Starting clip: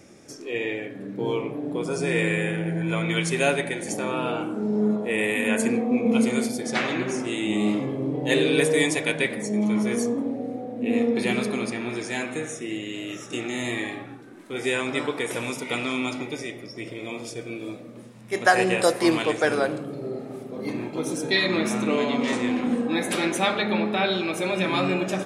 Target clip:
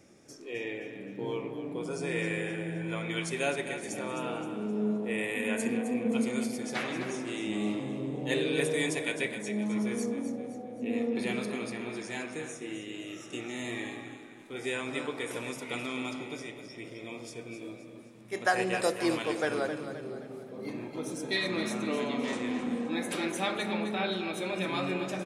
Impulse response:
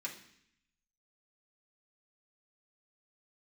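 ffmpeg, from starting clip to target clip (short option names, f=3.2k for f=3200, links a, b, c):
-af "aecho=1:1:261|522|783|1044|1305:0.316|0.136|0.0585|0.0251|0.0108,volume=-8.5dB"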